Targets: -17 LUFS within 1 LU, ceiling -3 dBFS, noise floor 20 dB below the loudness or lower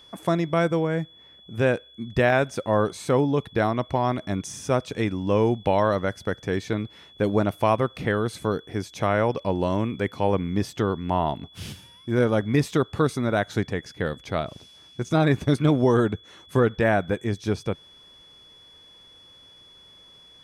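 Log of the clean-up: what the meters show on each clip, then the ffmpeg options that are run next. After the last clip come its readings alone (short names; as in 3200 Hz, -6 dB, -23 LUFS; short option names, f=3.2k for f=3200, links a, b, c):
steady tone 3400 Hz; tone level -49 dBFS; loudness -24.5 LUFS; peak -7.5 dBFS; loudness target -17.0 LUFS
-> -af "bandreject=f=3.4k:w=30"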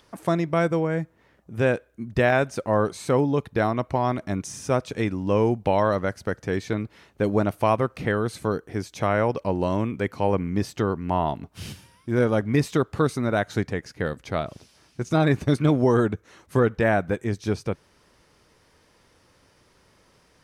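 steady tone none; loudness -24.5 LUFS; peak -7.5 dBFS; loudness target -17.0 LUFS
-> -af "volume=7.5dB,alimiter=limit=-3dB:level=0:latency=1"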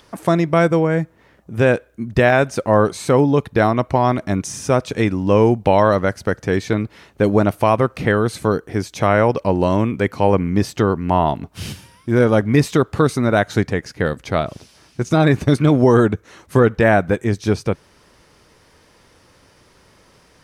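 loudness -17.5 LUFS; peak -3.0 dBFS; noise floor -53 dBFS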